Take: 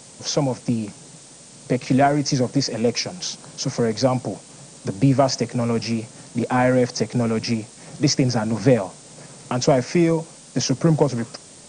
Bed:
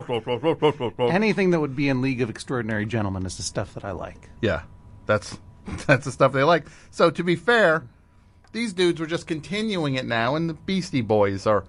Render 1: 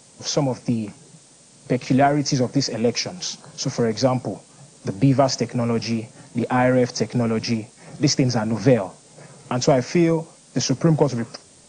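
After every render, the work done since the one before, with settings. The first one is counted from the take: noise print and reduce 6 dB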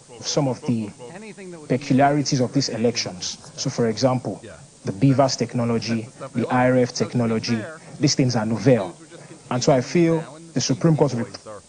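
add bed -17.5 dB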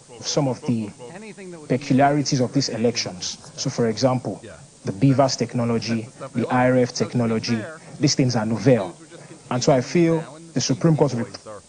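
no audible change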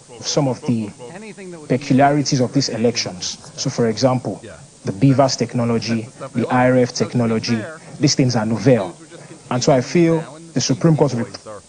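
trim +3.5 dB; peak limiter -2 dBFS, peak gain reduction 1.5 dB

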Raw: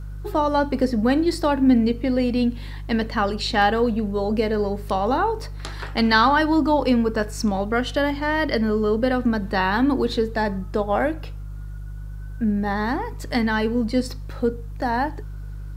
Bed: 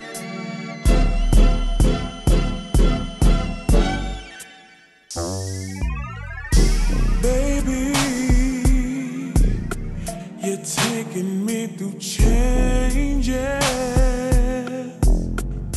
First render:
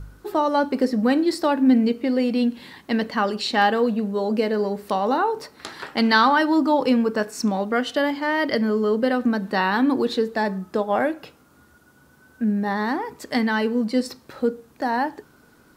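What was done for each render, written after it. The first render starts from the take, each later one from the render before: de-hum 50 Hz, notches 3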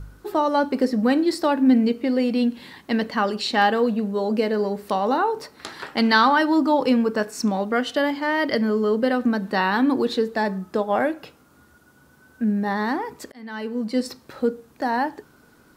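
13.32–14.08 s: fade in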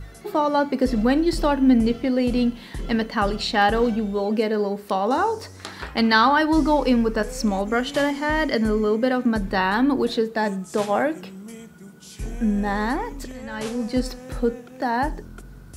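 add bed -16 dB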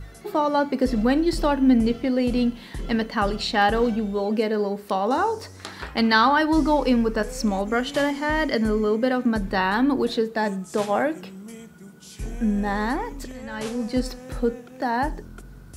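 trim -1 dB

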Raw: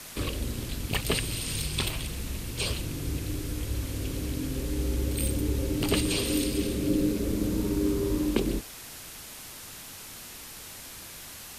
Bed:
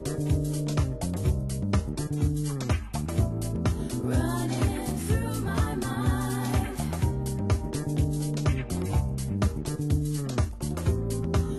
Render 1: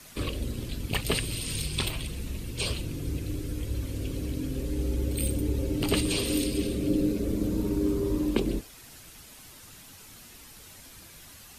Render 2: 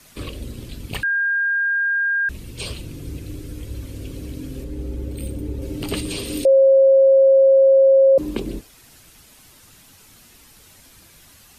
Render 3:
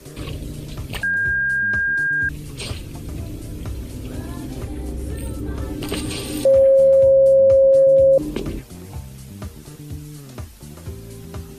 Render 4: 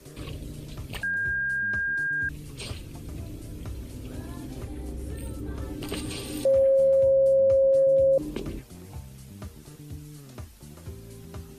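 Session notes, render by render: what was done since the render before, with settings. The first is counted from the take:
noise reduction 8 dB, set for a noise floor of -44 dBFS
1.03–2.29 s: bleep 1.61 kHz -17 dBFS; 4.64–5.62 s: treble shelf 2.2 kHz -8 dB; 6.45–8.18 s: bleep 539 Hz -9 dBFS
add bed -7.5 dB
trim -7.5 dB

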